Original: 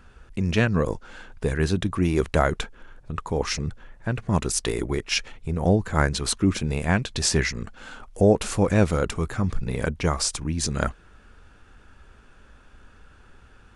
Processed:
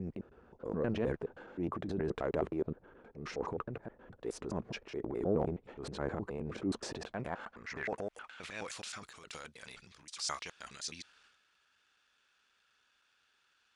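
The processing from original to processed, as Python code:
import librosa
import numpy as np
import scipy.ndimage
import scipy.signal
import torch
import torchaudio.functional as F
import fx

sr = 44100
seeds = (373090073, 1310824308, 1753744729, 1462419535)

y = fx.block_reorder(x, sr, ms=105.0, group=5)
y = fx.filter_sweep_bandpass(y, sr, from_hz=430.0, to_hz=4200.0, start_s=6.81, end_s=8.81, q=1.2)
y = fx.transient(y, sr, attack_db=-5, sustain_db=9)
y = y * 10.0 ** (-7.0 / 20.0)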